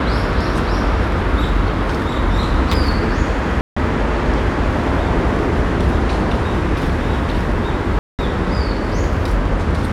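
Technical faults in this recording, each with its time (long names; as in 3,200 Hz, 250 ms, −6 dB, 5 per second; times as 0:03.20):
0:03.61–0:03.77: drop-out 155 ms
0:07.99–0:08.19: drop-out 198 ms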